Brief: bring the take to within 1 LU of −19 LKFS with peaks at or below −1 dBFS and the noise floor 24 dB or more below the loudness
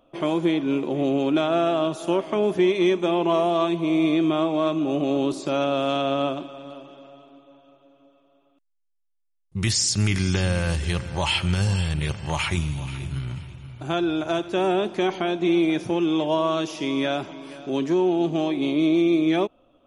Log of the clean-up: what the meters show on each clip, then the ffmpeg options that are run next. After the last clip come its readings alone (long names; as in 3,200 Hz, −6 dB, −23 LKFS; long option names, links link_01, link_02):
integrated loudness −23.5 LKFS; sample peak −10.0 dBFS; target loudness −19.0 LKFS
→ -af "volume=4.5dB"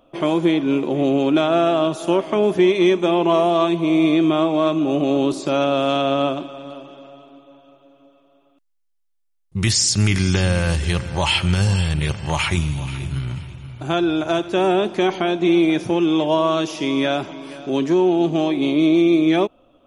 integrated loudness −19.0 LKFS; sample peak −5.5 dBFS; background noise floor −60 dBFS